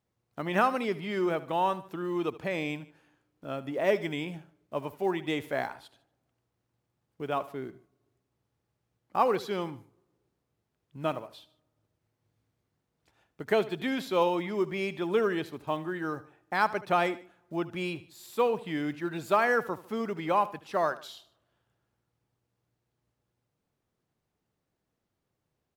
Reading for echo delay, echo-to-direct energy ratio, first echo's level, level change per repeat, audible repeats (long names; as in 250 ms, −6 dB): 75 ms, −16.0 dB, −17.0 dB, −7.0 dB, 2